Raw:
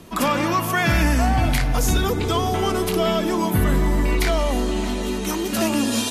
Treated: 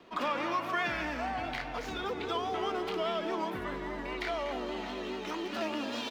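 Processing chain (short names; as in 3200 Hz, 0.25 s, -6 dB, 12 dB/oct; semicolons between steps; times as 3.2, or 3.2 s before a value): median filter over 5 samples; speakerphone echo 0.24 s, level -9 dB; compressor 2:1, threshold -21 dBFS, peak gain reduction 4 dB; low shelf 420 Hz -3 dB; vibrato 4.9 Hz 52 cents; three-band isolator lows -15 dB, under 270 Hz, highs -16 dB, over 5100 Hz; gain -7 dB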